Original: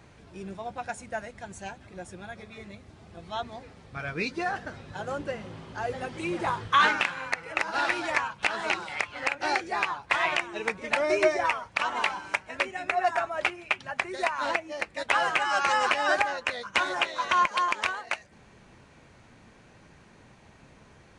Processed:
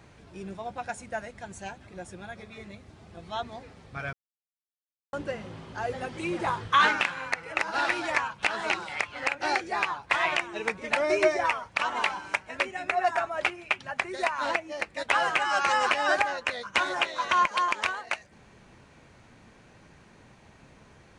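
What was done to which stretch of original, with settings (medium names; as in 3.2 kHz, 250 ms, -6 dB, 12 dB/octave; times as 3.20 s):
4.13–5.13 s: mute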